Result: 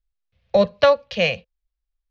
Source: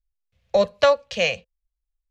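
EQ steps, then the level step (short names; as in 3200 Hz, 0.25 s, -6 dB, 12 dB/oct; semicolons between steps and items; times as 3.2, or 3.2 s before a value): LPF 5000 Hz 24 dB/oct; dynamic EQ 160 Hz, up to +7 dB, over -38 dBFS, Q 0.82; +1.0 dB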